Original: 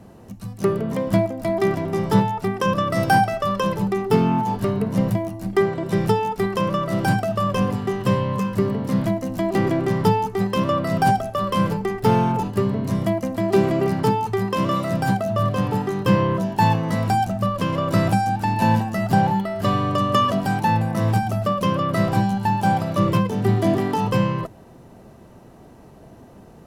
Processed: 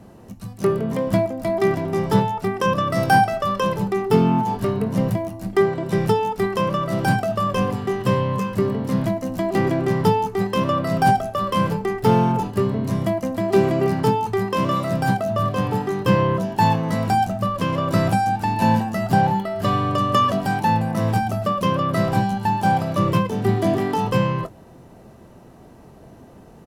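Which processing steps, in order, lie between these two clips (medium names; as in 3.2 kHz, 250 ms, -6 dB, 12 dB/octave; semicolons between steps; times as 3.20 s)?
doubling 23 ms -12.5 dB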